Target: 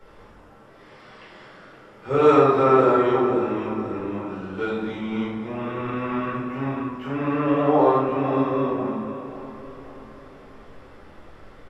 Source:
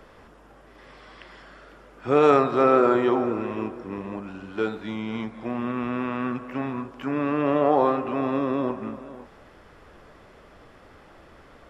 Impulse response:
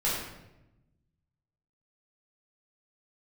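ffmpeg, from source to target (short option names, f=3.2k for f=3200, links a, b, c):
-filter_complex "[0:a]aecho=1:1:534|1068|1602|2136|2670:0.211|0.104|0.0507|0.0249|0.0122[a];[1:a]atrim=start_sample=2205,afade=t=out:st=0.39:d=0.01,atrim=end_sample=17640[b];[a][b]afir=irnorm=-1:irlink=0,volume=-8dB"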